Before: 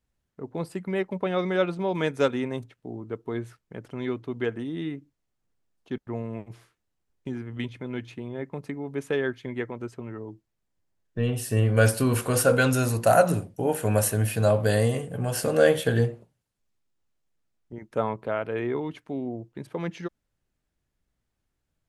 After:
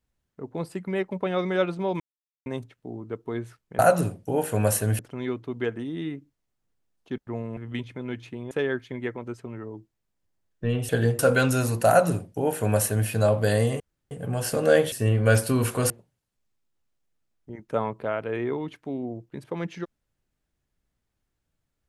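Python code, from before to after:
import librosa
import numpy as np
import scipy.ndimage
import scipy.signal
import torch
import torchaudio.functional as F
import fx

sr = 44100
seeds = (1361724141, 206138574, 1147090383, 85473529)

y = fx.edit(x, sr, fx.silence(start_s=2.0, length_s=0.46),
    fx.cut(start_s=6.37, length_s=1.05),
    fx.cut(start_s=8.36, length_s=0.69),
    fx.swap(start_s=11.43, length_s=0.98, other_s=15.83, other_length_s=0.3),
    fx.duplicate(start_s=13.1, length_s=1.2, to_s=3.79),
    fx.insert_room_tone(at_s=15.02, length_s=0.31), tone=tone)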